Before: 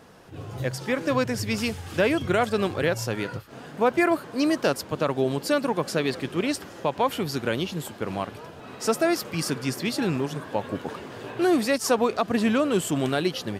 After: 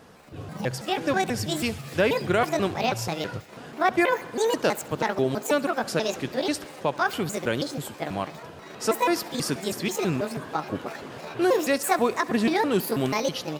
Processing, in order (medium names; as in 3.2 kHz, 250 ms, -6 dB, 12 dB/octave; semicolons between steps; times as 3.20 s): pitch shift switched off and on +7 st, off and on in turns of 162 ms; on a send: thinning echo 68 ms, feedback 76%, high-pass 180 Hz, level -21 dB